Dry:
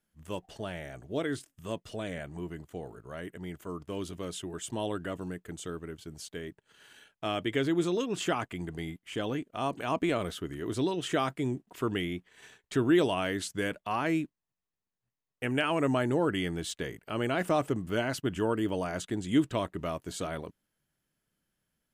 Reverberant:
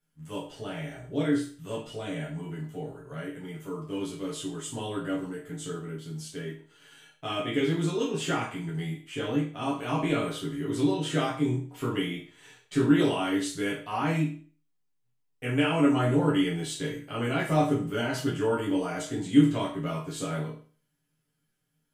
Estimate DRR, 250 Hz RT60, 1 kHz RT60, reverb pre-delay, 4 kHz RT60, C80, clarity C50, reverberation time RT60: -7.0 dB, 0.45 s, 0.40 s, 6 ms, 0.40 s, 10.5 dB, 5.5 dB, 0.40 s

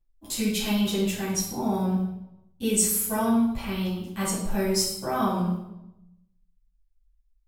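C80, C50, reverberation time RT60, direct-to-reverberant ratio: 5.5 dB, 2.0 dB, 0.90 s, -10.5 dB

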